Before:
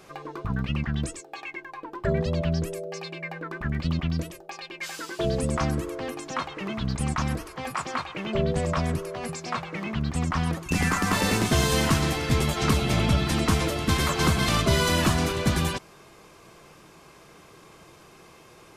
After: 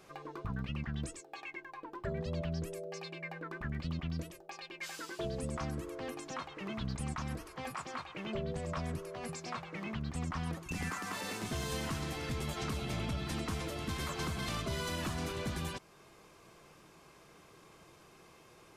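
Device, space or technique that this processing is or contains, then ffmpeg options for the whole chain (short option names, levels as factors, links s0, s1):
soft clipper into limiter: -filter_complex "[0:a]asoftclip=type=tanh:threshold=0.282,alimiter=limit=0.1:level=0:latency=1:release=395,asettb=1/sr,asplit=3[s0][s1][s2];[s0]atrim=end=10.904[s3];[s1]atrim=start=10.9:end=11.43,asetpts=PTS-STARTPTS,afade=t=in:d=0.004:c=qsin,afade=t=out:st=0.526:d=0.004:c=qsin,highpass=f=330:p=1[s4];[s2]atrim=start=11.426[s5];[s3][s4]acrossfade=d=0.004:c1=hsin:c2=qsin[s6];[s6][s5]acrossfade=d=0.004:c1=qsin:c2=hsin,volume=0.398"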